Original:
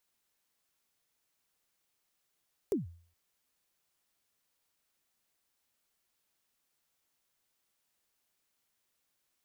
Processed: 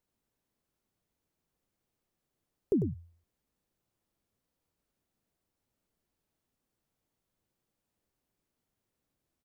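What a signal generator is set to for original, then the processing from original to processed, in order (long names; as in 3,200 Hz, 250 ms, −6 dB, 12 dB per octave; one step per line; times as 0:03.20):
synth kick length 0.42 s, from 450 Hz, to 85 Hz, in 144 ms, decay 0.48 s, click on, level −24 dB
tilt shelving filter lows +9.5 dB, about 700 Hz
on a send: single-tap delay 98 ms −8 dB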